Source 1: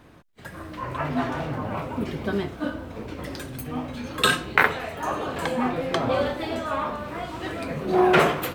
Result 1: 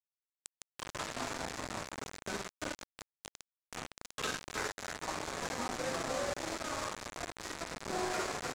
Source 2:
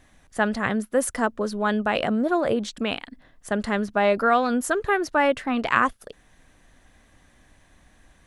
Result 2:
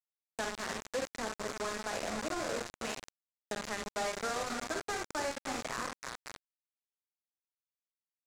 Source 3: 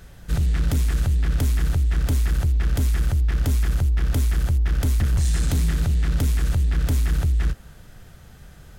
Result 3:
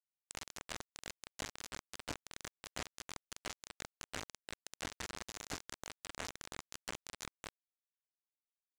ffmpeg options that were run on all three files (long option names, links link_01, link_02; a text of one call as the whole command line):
ffmpeg -i in.wav -filter_complex "[0:a]acrossover=split=260[link_01][link_02];[link_01]alimiter=level_in=0.5dB:limit=-24dB:level=0:latency=1:release=202,volume=-0.5dB[link_03];[link_03][link_02]amix=inputs=2:normalize=0,aecho=1:1:46|65|74|203|305|535:0.562|0.398|0.112|0.15|0.237|0.141,flanger=delay=9.3:depth=3.3:regen=-37:speed=0.87:shape=sinusoidal,lowshelf=frequency=220:gain=-7.5,bandreject=frequency=50:width_type=h:width=6,bandreject=frequency=100:width_type=h:width=6,bandreject=frequency=150:width_type=h:width=6,bandreject=frequency=200:width_type=h:width=6,bandreject=frequency=250:width_type=h:width=6,acrossover=split=540|3500[link_04][link_05][link_06];[link_04]acompressor=threshold=-34dB:ratio=4[link_07];[link_05]acompressor=threshold=-32dB:ratio=4[link_08];[link_06]acompressor=threshold=-53dB:ratio=4[link_09];[link_07][link_08][link_09]amix=inputs=3:normalize=0,aresample=16000,acrusher=bits=4:mix=0:aa=0.000001,aresample=44100,acompressor=mode=upward:threshold=-29dB:ratio=2.5,asoftclip=type=tanh:threshold=-28dB,adynamicequalizer=threshold=0.00158:dfrequency=3000:dqfactor=2.5:tfrequency=3000:tqfactor=2.5:attack=5:release=100:ratio=0.375:range=3:mode=cutabove:tftype=bell,volume=-1dB" out.wav